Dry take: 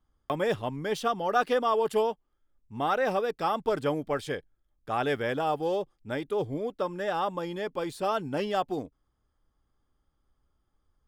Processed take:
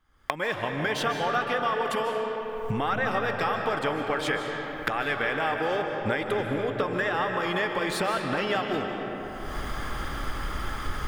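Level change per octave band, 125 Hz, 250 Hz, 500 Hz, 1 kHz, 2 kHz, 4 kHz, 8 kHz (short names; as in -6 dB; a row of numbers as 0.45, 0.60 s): +4.5, +2.5, 0.0, +2.0, +9.0, +6.5, +5.5 dB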